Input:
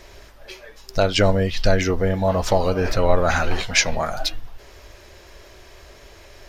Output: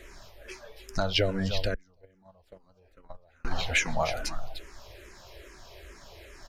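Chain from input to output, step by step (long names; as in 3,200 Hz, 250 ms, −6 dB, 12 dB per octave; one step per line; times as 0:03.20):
single-tap delay 300 ms −14.5 dB
downward compressor 6 to 1, threshold −18 dBFS, peak gain reduction 8.5 dB
0:01.74–0:03.45: noise gate −16 dBFS, range −35 dB
frequency shifter mixed with the dry sound −2.4 Hz
level −1 dB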